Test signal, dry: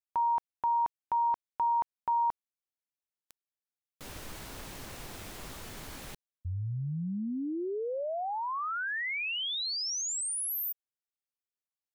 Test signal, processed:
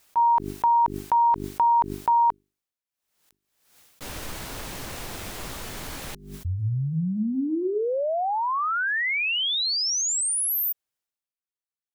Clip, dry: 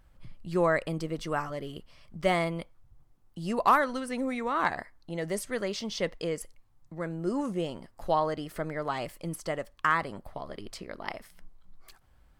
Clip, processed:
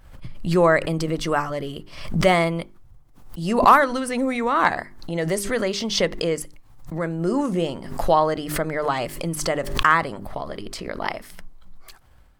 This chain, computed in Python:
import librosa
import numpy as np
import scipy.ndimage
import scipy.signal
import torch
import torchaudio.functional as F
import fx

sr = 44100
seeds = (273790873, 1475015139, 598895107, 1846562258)

y = fx.hum_notches(x, sr, base_hz=50, count=8)
y = fx.gate_hold(y, sr, open_db=-46.0, close_db=-56.0, hold_ms=227.0, range_db=-14, attack_ms=16.0, release_ms=385.0)
y = fx.pre_swell(y, sr, db_per_s=77.0)
y = y * 10.0 ** (8.5 / 20.0)